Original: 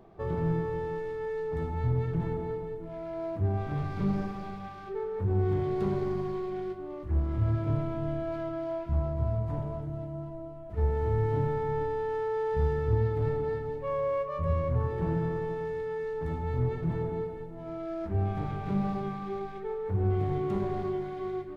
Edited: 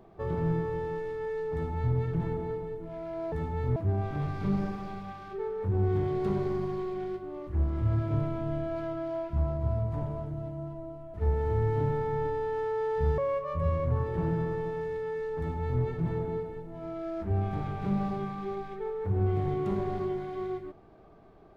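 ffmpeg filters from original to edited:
ffmpeg -i in.wav -filter_complex "[0:a]asplit=4[link_01][link_02][link_03][link_04];[link_01]atrim=end=3.322[link_05];[link_02]atrim=start=16.218:end=16.662[link_06];[link_03]atrim=start=3.318:end=12.742[link_07];[link_04]atrim=start=14.018[link_08];[link_05][link_06]acrossfade=duration=0.004:curve1=hsin:curve2=hsin[link_09];[link_09][link_07]acrossfade=duration=0.004:curve1=hsin:curve2=hsin[link_10];[link_10][link_08]acrossfade=duration=0.004:curve1=hsin:curve2=hsin" out.wav

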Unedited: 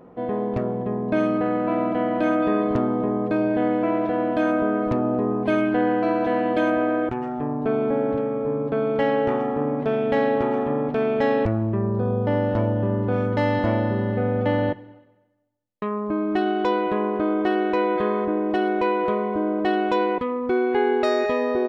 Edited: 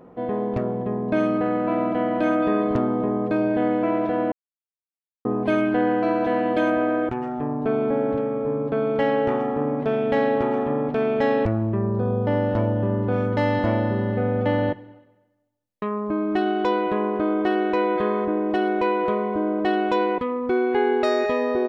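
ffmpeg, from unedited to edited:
ffmpeg -i in.wav -filter_complex "[0:a]asplit=3[link_01][link_02][link_03];[link_01]atrim=end=4.32,asetpts=PTS-STARTPTS,afade=type=out:start_time=4.316:duration=0.004:curve=hsin[link_04];[link_02]atrim=start=4.32:end=5.25,asetpts=PTS-STARTPTS,volume=0[link_05];[link_03]atrim=start=5.25,asetpts=PTS-STARTPTS,afade=type=in:duration=0.004:curve=hsin[link_06];[link_04][link_05][link_06]concat=n=3:v=0:a=1" out.wav

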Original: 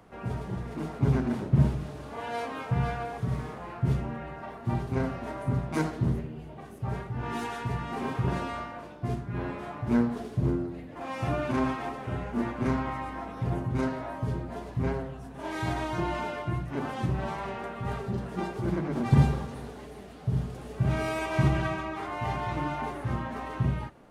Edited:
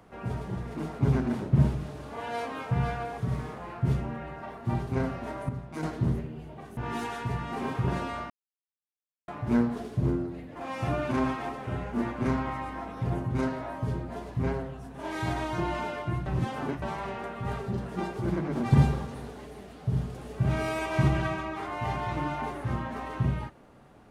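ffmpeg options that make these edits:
ffmpeg -i in.wav -filter_complex "[0:a]asplit=8[link_01][link_02][link_03][link_04][link_05][link_06][link_07][link_08];[link_01]atrim=end=5.492[link_09];[link_02]atrim=start=5.488:end=5.832,asetpts=PTS-STARTPTS,volume=-8.5dB[link_10];[link_03]atrim=start=5.828:end=6.772[link_11];[link_04]atrim=start=7.168:end=8.7,asetpts=PTS-STARTPTS,afade=type=out:start_time=1.528:duration=0.004:curve=hsin[link_12];[link_05]atrim=start=8.7:end=9.68,asetpts=PTS-STARTPTS,volume=0[link_13];[link_06]atrim=start=9.68:end=16.662,asetpts=PTS-STARTPTS,afade=type=in:duration=0.004:curve=hsin[link_14];[link_07]atrim=start=16.658:end=17.222,asetpts=PTS-STARTPTS,areverse[link_15];[link_08]atrim=start=17.218[link_16];[link_09][link_10]acrossfade=duration=0.004:curve1=hsin:curve2=hsin[link_17];[link_17][link_11]acrossfade=duration=0.004:curve1=hsin:curve2=hsin[link_18];[link_12][link_13][link_14]concat=n=3:v=0:a=1[link_19];[link_18][link_19]acrossfade=duration=0.004:curve1=hsin:curve2=hsin[link_20];[link_20][link_15]acrossfade=duration=0.004:curve1=hsin:curve2=hsin[link_21];[link_21][link_16]acrossfade=duration=0.004:curve1=hsin:curve2=hsin" out.wav

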